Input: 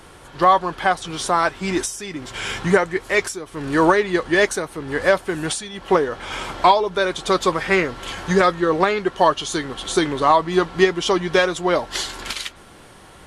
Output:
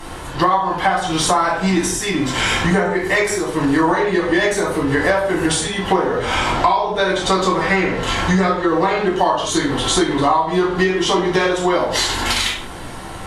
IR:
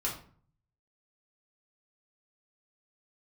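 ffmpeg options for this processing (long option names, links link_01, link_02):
-filter_complex "[0:a]asettb=1/sr,asplit=3[link_01][link_02][link_03];[link_01]atrim=end=6.334[link_04];[link_02]atrim=start=6.33:end=8.65,asetpts=PTS-STARTPTS,afade=type=in:duration=0.004:curve=qsin,afade=type=out:start_time=2.316:duration=0.004:curve=qsin,lowpass=9900[link_05];[link_03]atrim=start=8.646[link_06];[link_04][link_05]acrossfade=duration=0.004:curve1=hsin:curve2=qsin[link_07];[link_07][link_06]acrossfade=duration=0.004:curve1=qsin:curve2=hsin[link_08];[1:a]atrim=start_sample=2205,atrim=end_sample=6615,asetrate=31752,aresample=44100[link_09];[link_08][link_09]afir=irnorm=-1:irlink=0,acompressor=threshold=-20dB:ratio=6,volume=6dB"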